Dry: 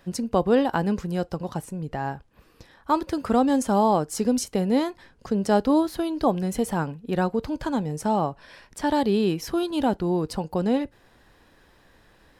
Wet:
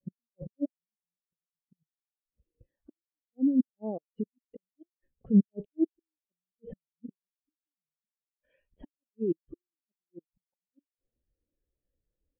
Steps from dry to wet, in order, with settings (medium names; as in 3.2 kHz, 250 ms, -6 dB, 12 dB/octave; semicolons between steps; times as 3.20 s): four-pole ladder low-pass 3.3 kHz, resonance 55%; resonant low shelf 750 Hz +6.5 dB, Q 1.5; compressor with a negative ratio -29 dBFS, ratio -0.5; vibrato 0.45 Hz 34 cents; in parallel at -4 dB: one-sided clip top -36.5 dBFS; on the sum: inverted gate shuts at -22 dBFS, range -40 dB; spectral contrast expander 2.5:1; trim +8 dB